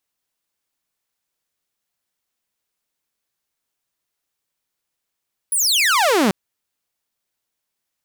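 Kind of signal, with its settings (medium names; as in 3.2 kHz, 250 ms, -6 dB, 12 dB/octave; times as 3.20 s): laser zap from 11 kHz, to 180 Hz, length 0.79 s saw, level -11 dB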